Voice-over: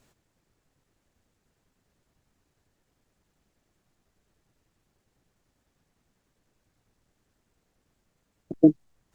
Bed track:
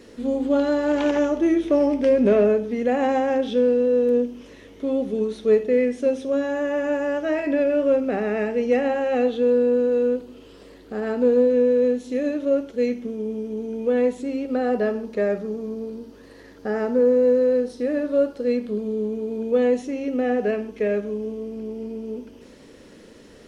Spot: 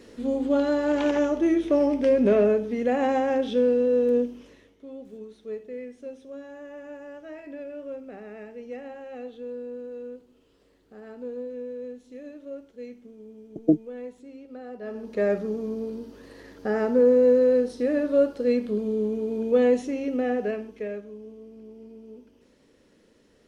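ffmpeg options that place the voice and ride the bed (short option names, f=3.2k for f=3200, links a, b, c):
-filter_complex "[0:a]adelay=5050,volume=-3dB[a];[1:a]volume=14.5dB,afade=t=out:st=4.23:d=0.54:silence=0.177828,afade=t=in:st=14.81:d=0.49:silence=0.141254,afade=t=out:st=19.81:d=1.24:silence=0.223872[b];[a][b]amix=inputs=2:normalize=0"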